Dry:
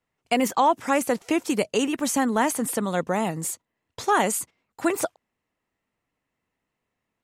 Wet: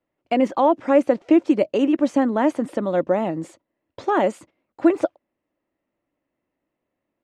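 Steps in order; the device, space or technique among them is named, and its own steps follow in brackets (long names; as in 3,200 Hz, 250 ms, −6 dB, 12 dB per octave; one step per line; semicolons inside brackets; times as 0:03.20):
inside a cardboard box (low-pass filter 3,300 Hz 12 dB per octave; hollow resonant body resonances 320/560 Hz, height 13 dB, ringing for 30 ms)
level −3.5 dB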